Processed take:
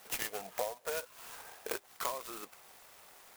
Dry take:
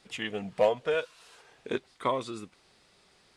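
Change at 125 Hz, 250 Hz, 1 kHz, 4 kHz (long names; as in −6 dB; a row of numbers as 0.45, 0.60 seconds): −16.5, −15.5, −7.5, −5.0 decibels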